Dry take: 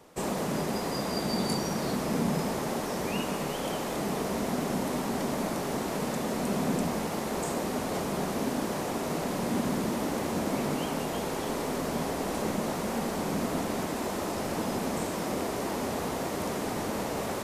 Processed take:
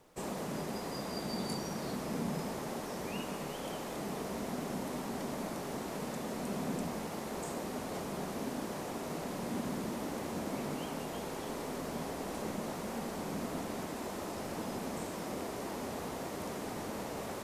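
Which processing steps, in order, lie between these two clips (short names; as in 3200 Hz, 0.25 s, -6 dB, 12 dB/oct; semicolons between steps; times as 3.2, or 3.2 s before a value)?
added noise pink -66 dBFS; gain -8 dB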